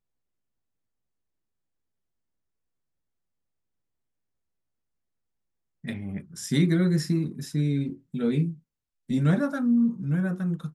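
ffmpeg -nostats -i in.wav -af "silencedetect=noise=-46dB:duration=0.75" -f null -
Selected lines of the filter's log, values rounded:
silence_start: 0.00
silence_end: 5.84 | silence_duration: 5.84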